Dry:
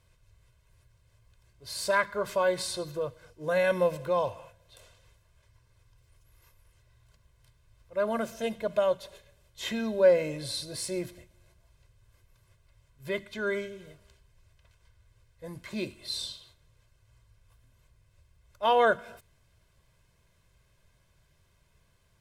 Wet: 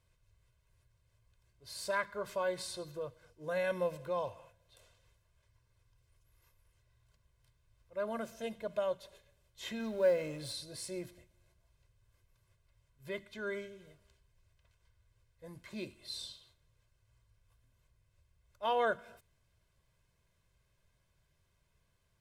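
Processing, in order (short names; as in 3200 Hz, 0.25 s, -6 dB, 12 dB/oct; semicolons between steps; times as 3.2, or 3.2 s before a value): 9.8–10.53 G.711 law mismatch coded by mu; gain -8.5 dB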